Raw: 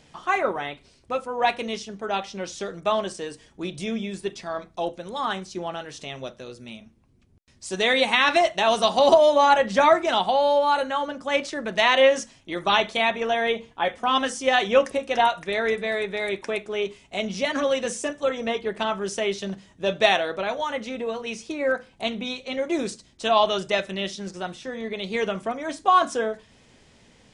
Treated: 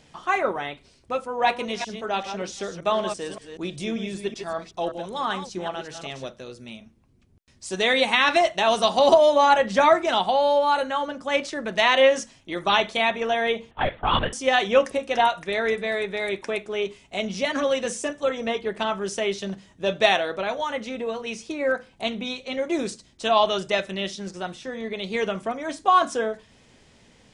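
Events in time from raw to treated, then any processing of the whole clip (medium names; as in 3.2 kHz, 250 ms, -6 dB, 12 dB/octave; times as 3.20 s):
1.27–6.26 s: chunks repeated in reverse 192 ms, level -8 dB
13.71–14.33 s: LPC vocoder at 8 kHz whisper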